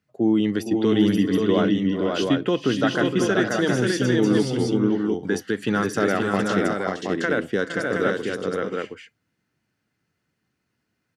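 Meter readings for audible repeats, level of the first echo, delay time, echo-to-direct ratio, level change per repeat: 5, -18.0 dB, 387 ms, 0.0 dB, no regular repeats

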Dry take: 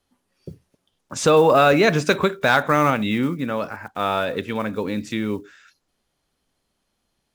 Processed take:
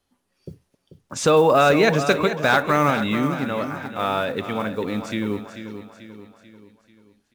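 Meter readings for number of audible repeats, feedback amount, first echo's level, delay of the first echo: 4, 48%, -10.5 dB, 439 ms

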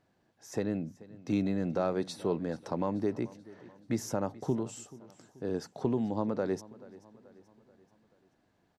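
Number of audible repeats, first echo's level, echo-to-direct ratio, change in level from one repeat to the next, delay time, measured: 3, -20.0 dB, -19.0 dB, -6.0 dB, 433 ms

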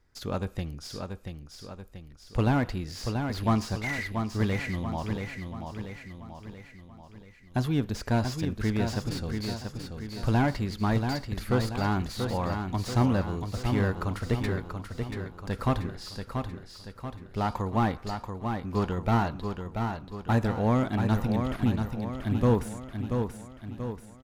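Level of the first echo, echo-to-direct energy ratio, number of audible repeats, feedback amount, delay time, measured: -6.0 dB, -4.5 dB, 5, 51%, 684 ms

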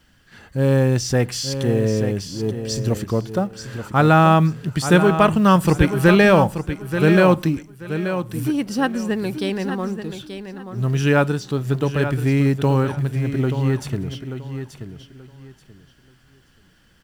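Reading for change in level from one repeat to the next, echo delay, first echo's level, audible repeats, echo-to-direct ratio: -13.0 dB, 881 ms, -9.5 dB, 2, -9.5 dB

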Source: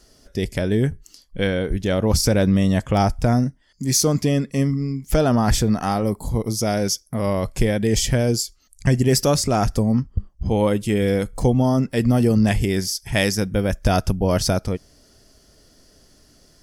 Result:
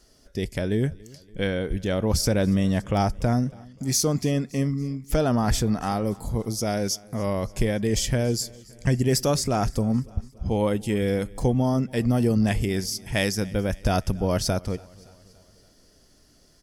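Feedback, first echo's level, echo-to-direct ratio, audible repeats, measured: 57%, -23.5 dB, -22.0 dB, 3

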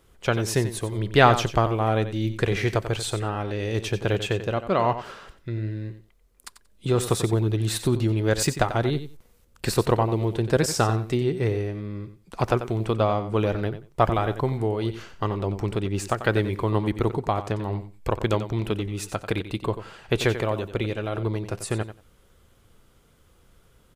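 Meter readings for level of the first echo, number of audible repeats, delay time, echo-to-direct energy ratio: -11.5 dB, 2, 91 ms, -11.5 dB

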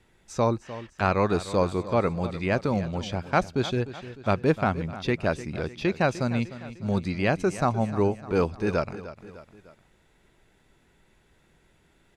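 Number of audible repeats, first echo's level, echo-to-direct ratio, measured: 3, -14.5 dB, -13.5 dB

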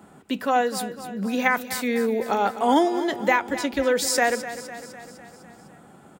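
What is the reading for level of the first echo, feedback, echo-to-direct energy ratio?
-13.0 dB, 59%, -11.0 dB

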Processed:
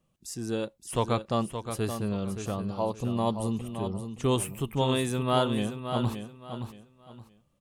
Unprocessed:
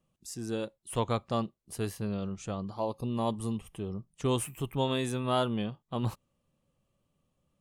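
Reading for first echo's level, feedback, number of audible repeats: -8.5 dB, 27%, 3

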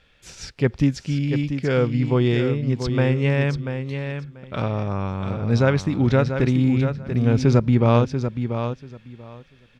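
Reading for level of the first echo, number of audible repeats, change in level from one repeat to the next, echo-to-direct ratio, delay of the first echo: -8.0 dB, 2, -15.5 dB, -8.0 dB, 688 ms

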